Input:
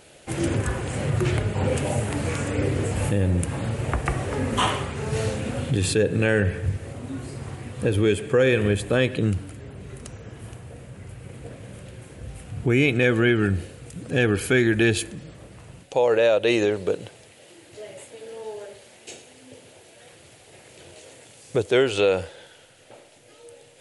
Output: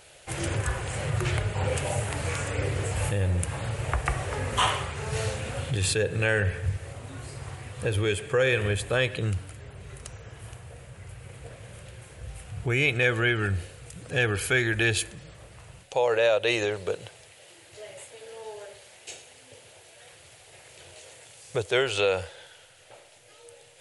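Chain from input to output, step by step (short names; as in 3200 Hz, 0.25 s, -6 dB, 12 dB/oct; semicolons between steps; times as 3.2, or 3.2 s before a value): bell 250 Hz -14.5 dB 1.3 oct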